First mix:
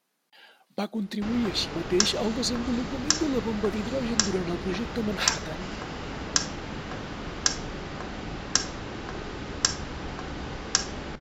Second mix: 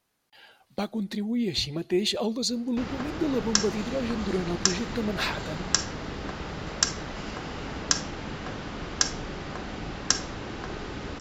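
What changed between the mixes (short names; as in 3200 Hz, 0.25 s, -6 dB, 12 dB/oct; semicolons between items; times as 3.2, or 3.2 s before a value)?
speech: remove brick-wall FIR high-pass 150 Hz; background: entry +1.55 s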